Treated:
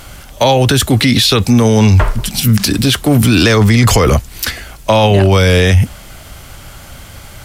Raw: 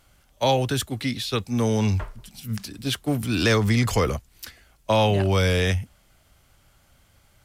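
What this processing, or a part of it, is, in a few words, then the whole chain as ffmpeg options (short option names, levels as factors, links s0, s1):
loud club master: -af "acompressor=threshold=0.0708:ratio=2.5,asoftclip=type=hard:threshold=0.168,alimiter=level_in=21.1:limit=0.891:release=50:level=0:latency=1,volume=0.891"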